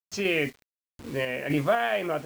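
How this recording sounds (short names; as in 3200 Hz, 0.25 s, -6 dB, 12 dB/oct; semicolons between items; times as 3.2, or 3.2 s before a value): a quantiser's noise floor 8-bit, dither none; random-step tremolo 4 Hz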